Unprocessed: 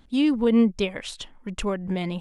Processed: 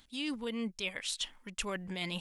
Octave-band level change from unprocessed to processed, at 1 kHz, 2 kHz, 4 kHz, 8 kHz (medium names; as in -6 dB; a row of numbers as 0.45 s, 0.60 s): -10.0 dB, -3.5 dB, -2.0 dB, +1.0 dB